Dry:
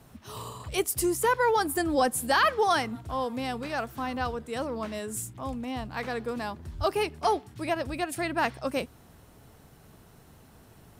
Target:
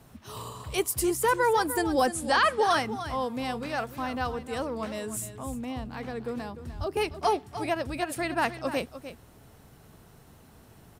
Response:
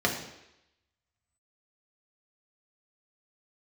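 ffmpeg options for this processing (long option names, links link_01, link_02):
-filter_complex "[0:a]asettb=1/sr,asplit=3[link_01][link_02][link_03];[link_01]atrim=end=2.014[link_04];[link_02]atrim=start=2.01:end=2.62,asetpts=PTS-STARTPTS,afade=type=in:duration=0.004:curve=qsin,afade=type=out:start_time=0.606:duration=0.004:curve=qsin,lowpass=frequency=9500:width=0.5412,lowpass=frequency=9500:width=1.3066[link_05];[link_03]atrim=start=2.616[link_06];[link_04][link_05]acrossfade=duration=0.004:curve1=hsin:curve2=qsin[link_07];[link_07][link_06]acrossfade=duration=0.004:curve1=qsin:curve2=hsin,asettb=1/sr,asplit=3[link_08][link_09][link_10];[link_08]atrim=end=5.374[link_11];[link_09]atrim=start=5.37:end=6.97,asetpts=PTS-STARTPTS,afade=type=in:duration=0.004:curve=qsin,afade=type=out:start_time=1.596:duration=0.004:curve=qsin,acrossover=split=500[link_12][link_13];[link_13]acompressor=threshold=-39dB:ratio=6[link_14];[link_12][link_14]amix=inputs=2:normalize=0[link_15];[link_10]atrim=start=6.966[link_16];[link_11][link_15]acrossfade=duration=0.004:curve1=hsin:curve2=qsin[link_17];[link_17][link_16]acrossfade=duration=0.004:curve1=qsin:curve2=hsin,aecho=1:1:300:0.251"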